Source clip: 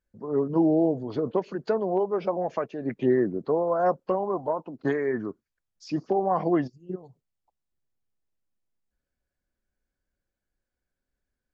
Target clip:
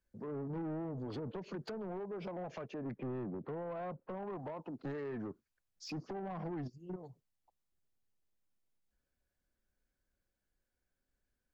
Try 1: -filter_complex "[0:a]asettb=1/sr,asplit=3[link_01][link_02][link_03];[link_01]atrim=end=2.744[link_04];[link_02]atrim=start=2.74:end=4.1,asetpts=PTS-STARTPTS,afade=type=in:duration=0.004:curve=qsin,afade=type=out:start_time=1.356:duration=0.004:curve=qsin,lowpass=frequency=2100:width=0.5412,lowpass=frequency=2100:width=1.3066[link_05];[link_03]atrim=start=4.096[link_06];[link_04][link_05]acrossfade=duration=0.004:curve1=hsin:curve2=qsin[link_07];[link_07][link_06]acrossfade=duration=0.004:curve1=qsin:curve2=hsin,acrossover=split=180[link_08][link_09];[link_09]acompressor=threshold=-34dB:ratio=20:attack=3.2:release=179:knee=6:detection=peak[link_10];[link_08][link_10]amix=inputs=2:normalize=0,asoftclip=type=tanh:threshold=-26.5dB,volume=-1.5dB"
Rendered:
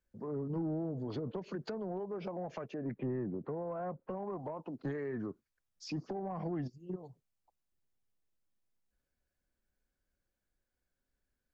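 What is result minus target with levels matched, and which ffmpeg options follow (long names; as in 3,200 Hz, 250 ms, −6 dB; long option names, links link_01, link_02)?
soft clipping: distortion −10 dB
-filter_complex "[0:a]asettb=1/sr,asplit=3[link_01][link_02][link_03];[link_01]atrim=end=2.744[link_04];[link_02]atrim=start=2.74:end=4.1,asetpts=PTS-STARTPTS,afade=type=in:duration=0.004:curve=qsin,afade=type=out:start_time=1.356:duration=0.004:curve=qsin,lowpass=frequency=2100:width=0.5412,lowpass=frequency=2100:width=1.3066[link_05];[link_03]atrim=start=4.096[link_06];[link_04][link_05]acrossfade=duration=0.004:curve1=hsin:curve2=qsin[link_07];[link_07][link_06]acrossfade=duration=0.004:curve1=qsin:curve2=hsin,acrossover=split=180[link_08][link_09];[link_09]acompressor=threshold=-34dB:ratio=20:attack=3.2:release=179:knee=6:detection=peak[link_10];[link_08][link_10]amix=inputs=2:normalize=0,asoftclip=type=tanh:threshold=-35dB,volume=-1.5dB"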